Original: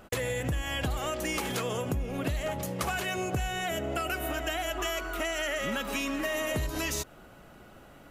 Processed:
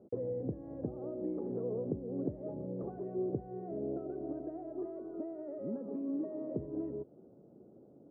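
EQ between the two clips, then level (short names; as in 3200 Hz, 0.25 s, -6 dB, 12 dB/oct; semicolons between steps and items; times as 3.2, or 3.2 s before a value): Bessel high-pass 160 Hz, order 4; ladder low-pass 510 Hz, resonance 40%; air absorption 470 m; +5.0 dB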